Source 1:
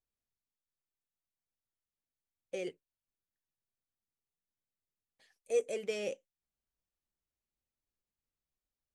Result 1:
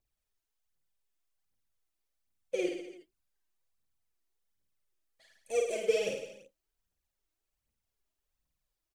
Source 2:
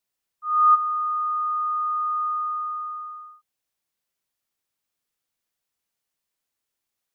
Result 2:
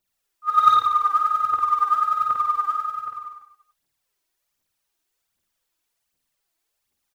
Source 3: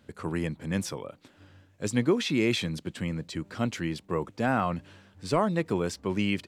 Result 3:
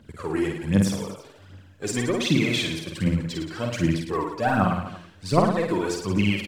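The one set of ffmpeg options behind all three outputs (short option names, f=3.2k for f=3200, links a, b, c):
-af "asoftclip=type=tanh:threshold=-11.5dB,aphaser=in_gain=1:out_gain=1:delay=3.3:decay=0.73:speed=1.3:type=triangular,aecho=1:1:50|107.5|173.6|249.7|337.1:0.631|0.398|0.251|0.158|0.1"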